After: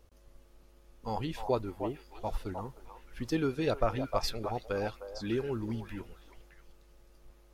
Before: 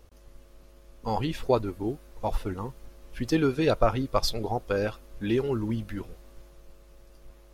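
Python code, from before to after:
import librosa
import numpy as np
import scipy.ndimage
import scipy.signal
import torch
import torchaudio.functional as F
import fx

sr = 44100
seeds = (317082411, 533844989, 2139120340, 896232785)

y = fx.echo_stepped(x, sr, ms=307, hz=780.0, octaves=1.4, feedback_pct=70, wet_db=-4.5)
y = y * librosa.db_to_amplitude(-6.5)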